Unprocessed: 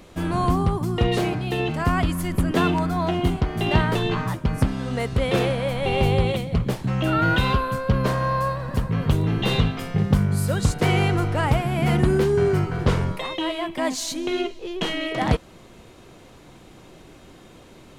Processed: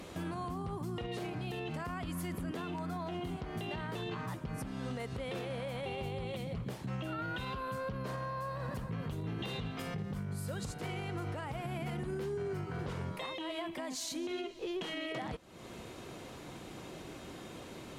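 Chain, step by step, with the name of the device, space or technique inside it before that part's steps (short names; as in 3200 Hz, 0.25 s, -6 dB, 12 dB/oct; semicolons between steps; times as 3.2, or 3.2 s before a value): podcast mastering chain (HPF 88 Hz 6 dB/oct; compressor 4:1, threshold -36 dBFS, peak gain reduction 18 dB; limiter -31 dBFS, peak gain reduction 9.5 dB; gain +1 dB; MP3 96 kbps 48000 Hz)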